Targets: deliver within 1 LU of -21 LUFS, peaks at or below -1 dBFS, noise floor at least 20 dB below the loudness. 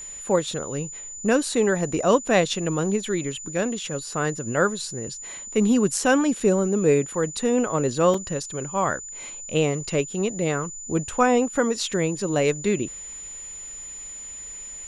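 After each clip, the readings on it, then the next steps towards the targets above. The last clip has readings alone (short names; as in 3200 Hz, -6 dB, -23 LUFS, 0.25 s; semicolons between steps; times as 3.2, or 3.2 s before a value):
dropouts 2; longest dropout 3.8 ms; steady tone 7000 Hz; tone level -35 dBFS; loudness -23.5 LUFS; peak -6.0 dBFS; loudness target -21.0 LUFS
-> interpolate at 6.4/8.14, 3.8 ms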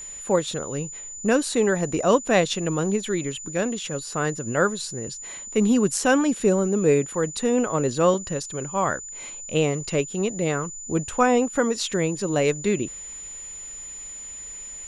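dropouts 0; steady tone 7000 Hz; tone level -35 dBFS
-> notch 7000 Hz, Q 30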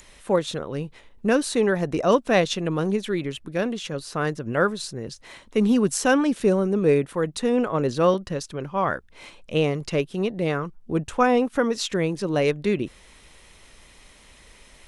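steady tone none; loudness -24.0 LUFS; peak -6.0 dBFS; loudness target -21.0 LUFS
-> gain +3 dB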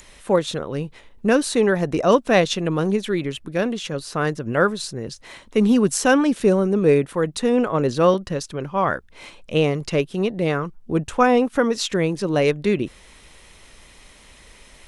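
loudness -21.0 LUFS; peak -3.0 dBFS; noise floor -49 dBFS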